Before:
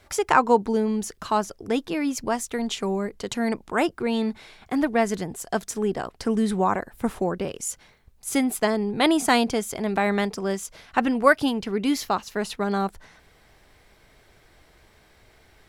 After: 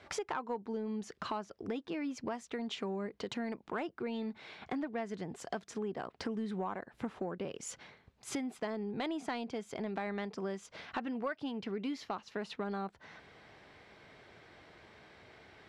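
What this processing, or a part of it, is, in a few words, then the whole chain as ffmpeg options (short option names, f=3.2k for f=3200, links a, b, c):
AM radio: -af "highpass=120,lowpass=3.9k,acompressor=threshold=-37dB:ratio=5,asoftclip=type=tanh:threshold=-26dB,volume=1dB"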